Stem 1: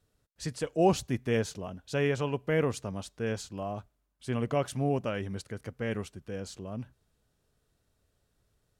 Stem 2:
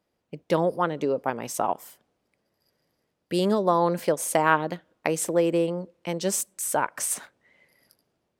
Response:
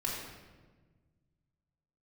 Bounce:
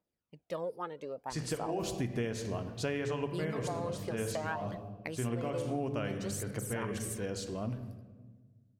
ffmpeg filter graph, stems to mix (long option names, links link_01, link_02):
-filter_complex "[0:a]alimiter=limit=-20dB:level=0:latency=1:release=310,agate=range=-33dB:threshold=-58dB:ratio=3:detection=peak,adelay=900,volume=0.5dB,asplit=2[link_01][link_02];[link_02]volume=-9.5dB[link_03];[1:a]aphaser=in_gain=1:out_gain=1:delay=2.5:decay=0.58:speed=0.61:type=triangular,volume=-15.5dB,asplit=2[link_04][link_05];[link_05]apad=whole_len=427727[link_06];[link_01][link_06]sidechaincompress=threshold=-44dB:ratio=8:attack=5.1:release=159[link_07];[2:a]atrim=start_sample=2205[link_08];[link_03][link_08]afir=irnorm=-1:irlink=0[link_09];[link_07][link_04][link_09]amix=inputs=3:normalize=0,acompressor=threshold=-31dB:ratio=5"